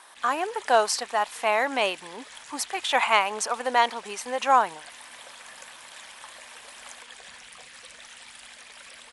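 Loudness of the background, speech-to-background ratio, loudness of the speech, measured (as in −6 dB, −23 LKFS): −44.0 LKFS, 19.5 dB, −24.5 LKFS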